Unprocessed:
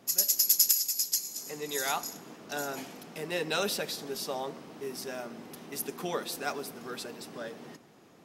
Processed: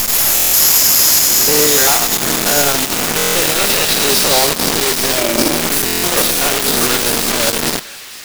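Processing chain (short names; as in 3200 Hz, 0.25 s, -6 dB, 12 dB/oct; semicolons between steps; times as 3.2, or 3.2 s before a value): stepped spectrum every 0.1 s; in parallel at +1 dB: compressor, threshold -43 dBFS, peak gain reduction 17.5 dB; on the sum: fuzz box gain 52 dB, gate -45 dBFS; on a send at -22 dB: reverb RT60 0.90 s, pre-delay 20 ms; on the sum: transient shaper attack -1 dB, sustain -5 dB; thin delay 0.451 s, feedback 32%, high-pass 2300 Hz, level -5 dB; companded quantiser 2-bit; 5.18–5.62 small resonant body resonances 330/570/2300 Hz, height 10 dB; stuck buffer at 0.35/3.17/5.85, samples 1024, times 7; gain -5 dB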